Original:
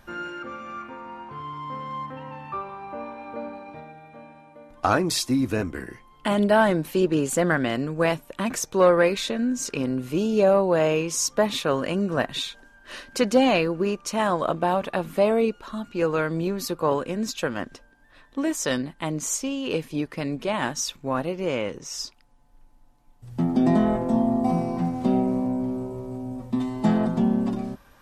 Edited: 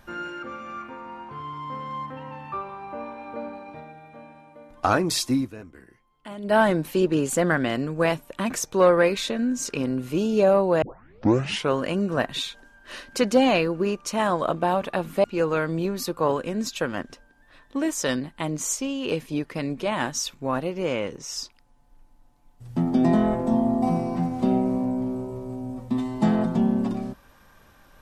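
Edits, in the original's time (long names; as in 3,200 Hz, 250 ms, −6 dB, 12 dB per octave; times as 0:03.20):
0:05.37–0:06.56: duck −15 dB, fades 0.13 s
0:10.82: tape start 0.92 s
0:15.24–0:15.86: remove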